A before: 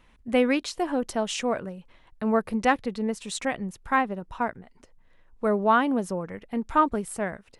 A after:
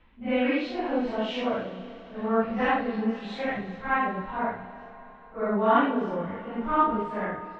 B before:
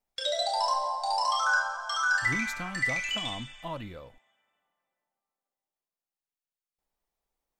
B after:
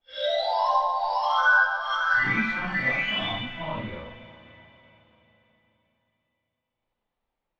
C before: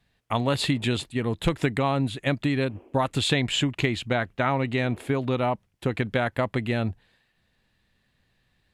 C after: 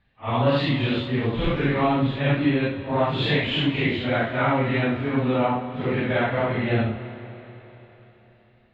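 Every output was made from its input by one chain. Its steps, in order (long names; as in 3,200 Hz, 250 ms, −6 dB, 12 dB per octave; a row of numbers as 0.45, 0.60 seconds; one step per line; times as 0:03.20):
random phases in long frames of 200 ms
low-pass filter 3,500 Hz 24 dB per octave
four-comb reverb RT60 3.9 s, combs from 25 ms, DRR 10.5 dB
normalise the peak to −9 dBFS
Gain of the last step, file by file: −1.0, +5.0, +3.0 decibels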